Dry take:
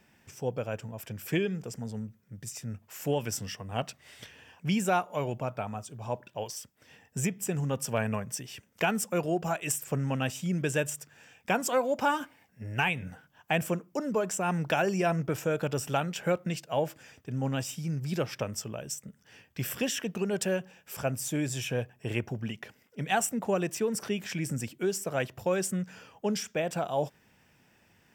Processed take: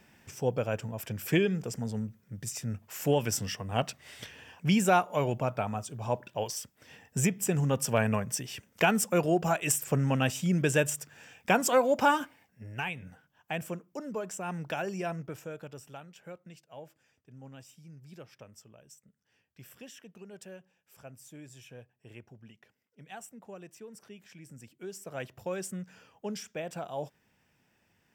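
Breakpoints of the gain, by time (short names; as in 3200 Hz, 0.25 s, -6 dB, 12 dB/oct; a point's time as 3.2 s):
12.1 s +3 dB
12.77 s -7 dB
15.05 s -7 dB
16.02 s -18 dB
24.46 s -18 dB
25.27 s -7 dB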